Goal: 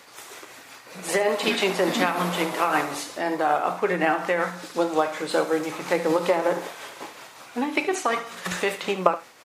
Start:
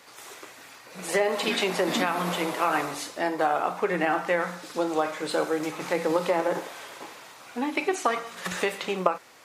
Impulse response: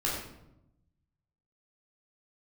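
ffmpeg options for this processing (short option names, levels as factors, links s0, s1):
-af "tremolo=f=5.4:d=0.4,aecho=1:1:73:0.2,volume=1.58"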